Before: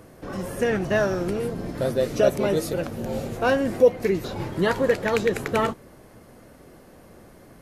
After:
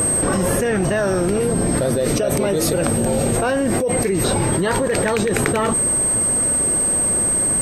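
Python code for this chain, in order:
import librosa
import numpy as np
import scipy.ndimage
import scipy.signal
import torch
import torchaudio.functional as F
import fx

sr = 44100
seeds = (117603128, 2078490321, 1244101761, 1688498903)

y = fx.rider(x, sr, range_db=5, speed_s=2.0)
y = y + 10.0 ** (-37.0 / 20.0) * np.sin(2.0 * np.pi * 8300.0 * np.arange(len(y)) / sr)
y = fx.env_flatten(y, sr, amount_pct=100)
y = y * 10.0 ** (-8.5 / 20.0)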